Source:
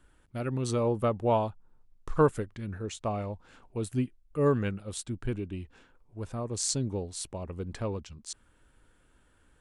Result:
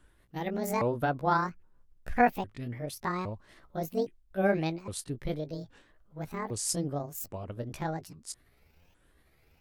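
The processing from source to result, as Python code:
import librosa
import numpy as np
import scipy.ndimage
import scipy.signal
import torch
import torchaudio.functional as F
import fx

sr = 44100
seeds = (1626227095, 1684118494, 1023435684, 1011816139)

y = fx.pitch_ramps(x, sr, semitones=11.0, every_ms=813)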